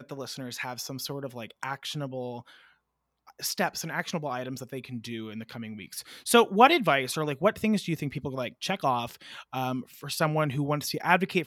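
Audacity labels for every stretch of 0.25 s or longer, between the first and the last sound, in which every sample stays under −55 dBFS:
2.730000	3.270000	silence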